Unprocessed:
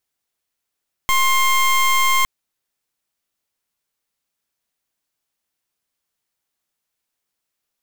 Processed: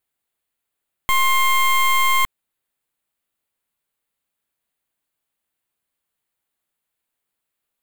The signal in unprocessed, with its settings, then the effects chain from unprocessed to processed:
pulse 1060 Hz, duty 22% -15.5 dBFS 1.16 s
bell 5600 Hz -11.5 dB 0.53 oct

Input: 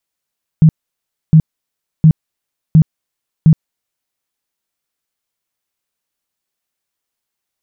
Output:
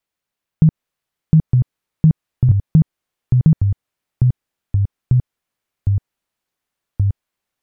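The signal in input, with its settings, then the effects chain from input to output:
tone bursts 158 Hz, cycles 11, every 0.71 s, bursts 5, -2.5 dBFS
tone controls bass +1 dB, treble -7 dB; compressor, threshold -8 dBFS; echoes that change speed 0.752 s, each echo -4 st, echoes 2

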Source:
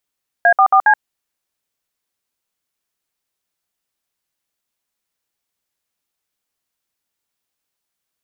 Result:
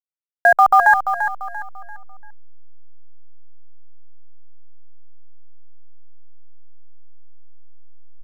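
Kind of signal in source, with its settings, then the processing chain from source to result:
DTMF "A44C", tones 77 ms, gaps 60 ms, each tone -10 dBFS
level-crossing sampler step -31 dBFS; low shelf 140 Hz +11.5 dB; on a send: feedback echo 0.342 s, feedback 35%, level -9 dB

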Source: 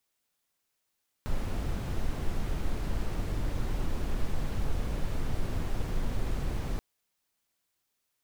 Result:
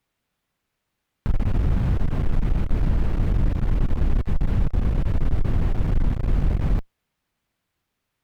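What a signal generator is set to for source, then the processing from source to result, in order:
noise brown, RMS -28.5 dBFS 5.53 s
tone controls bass +9 dB, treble -12 dB; in parallel at +2 dB: limiter -19 dBFS; on the sum: one-sided clip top -19.5 dBFS, bottom -9 dBFS

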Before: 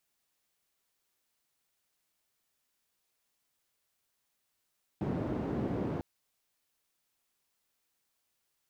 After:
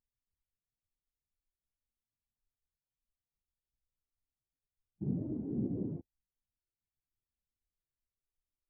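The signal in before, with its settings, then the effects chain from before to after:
noise band 85–330 Hz, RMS -34 dBFS 1.00 s
CVSD 16 kbps; added noise pink -57 dBFS; spectral expander 2.5:1

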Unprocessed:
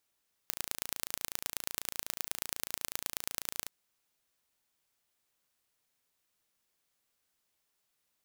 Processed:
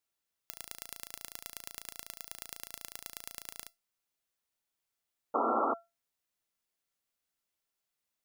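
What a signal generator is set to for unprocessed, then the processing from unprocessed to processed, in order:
pulse train 28.1/s, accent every 3, -5 dBFS 3.17 s
painted sound noise, 5.34–5.74, 220–1400 Hz -22 dBFS; resonator 680 Hz, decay 0.22 s, harmonics all, mix 60%

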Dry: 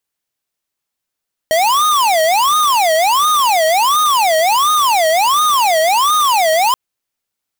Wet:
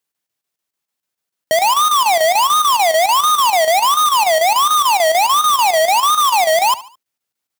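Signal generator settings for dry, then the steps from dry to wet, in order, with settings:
siren wail 631–1240 Hz 1.4/s square -12.5 dBFS 5.23 s
HPF 86 Hz 24 dB/oct; chopper 6.8 Hz, depth 60%, duty 80%; feedback echo 72 ms, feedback 39%, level -17.5 dB

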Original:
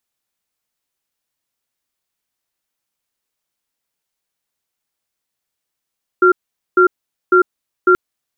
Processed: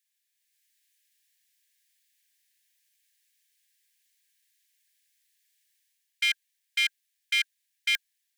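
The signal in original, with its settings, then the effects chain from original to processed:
cadence 365 Hz, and 1380 Hz, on 0.10 s, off 0.45 s, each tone -9.5 dBFS 1.73 s
AGC gain up to 8 dB; hard clip -8.5 dBFS; Chebyshev high-pass 1600 Hz, order 10

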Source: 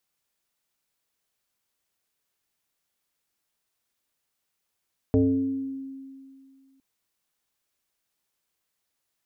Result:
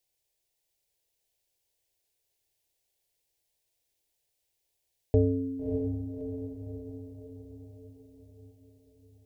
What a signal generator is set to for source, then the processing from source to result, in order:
FM tone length 1.66 s, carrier 269 Hz, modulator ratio 0.63, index 1.3, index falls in 1.25 s exponential, decay 2.26 s, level -15.5 dB
low shelf 300 Hz +5.5 dB; fixed phaser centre 520 Hz, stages 4; on a send: diffused feedback echo 0.615 s, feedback 55%, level -6.5 dB

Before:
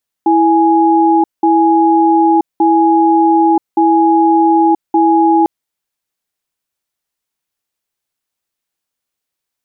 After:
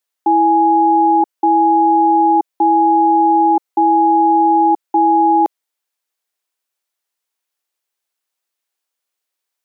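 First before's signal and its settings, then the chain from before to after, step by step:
cadence 329 Hz, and 832 Hz, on 0.98 s, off 0.19 s, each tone -9.5 dBFS 5.20 s
HPF 400 Hz 12 dB/oct

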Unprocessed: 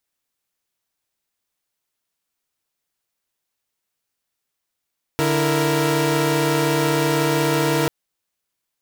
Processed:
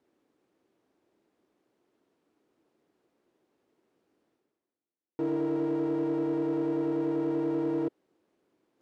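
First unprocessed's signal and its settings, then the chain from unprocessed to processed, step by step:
chord D3/E4/A#4 saw, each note -19 dBFS 2.69 s
reverse; upward compressor, threshold -32 dBFS; reverse; hard clip -21.5 dBFS; band-pass 330 Hz, Q 2.5

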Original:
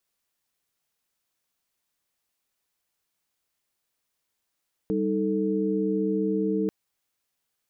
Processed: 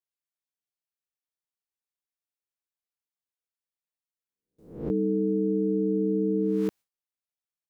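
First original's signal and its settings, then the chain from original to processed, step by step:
chord G3/D#4/A4 sine, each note -27 dBFS 1.79 s
spectral swells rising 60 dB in 0.57 s; gate with hold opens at -53 dBFS

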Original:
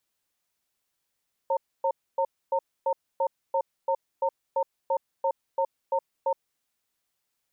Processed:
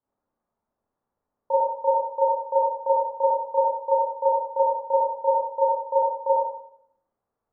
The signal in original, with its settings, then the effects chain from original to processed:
cadence 542 Hz, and 912 Hz, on 0.07 s, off 0.27 s, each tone -24.5 dBFS 4.99 s
LPF 1100 Hz 24 dB/oct; Schroeder reverb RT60 0.7 s, combs from 27 ms, DRR -8.5 dB

